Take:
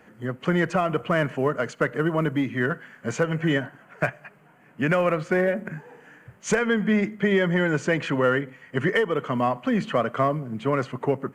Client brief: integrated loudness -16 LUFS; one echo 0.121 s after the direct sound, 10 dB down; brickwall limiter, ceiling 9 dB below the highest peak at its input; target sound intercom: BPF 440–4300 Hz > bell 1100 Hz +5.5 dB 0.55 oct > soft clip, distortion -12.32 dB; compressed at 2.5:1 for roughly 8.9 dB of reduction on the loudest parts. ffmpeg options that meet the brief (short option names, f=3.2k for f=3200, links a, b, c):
-af "acompressor=threshold=-31dB:ratio=2.5,alimiter=level_in=1dB:limit=-24dB:level=0:latency=1,volume=-1dB,highpass=440,lowpass=4.3k,equalizer=f=1.1k:t=o:w=0.55:g=5.5,aecho=1:1:121:0.316,asoftclip=threshold=-32dB,volume=23.5dB"